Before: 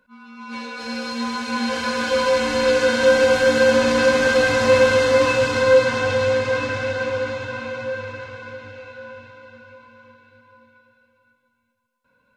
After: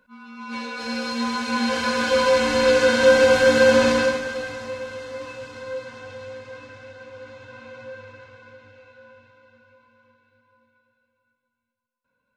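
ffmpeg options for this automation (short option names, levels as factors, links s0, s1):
-af "volume=2.37,afade=t=out:st=3.86:d=0.36:silence=0.266073,afade=t=out:st=4.22:d=0.55:silence=0.446684,afade=t=in:st=7.09:d=0.72:silence=0.446684"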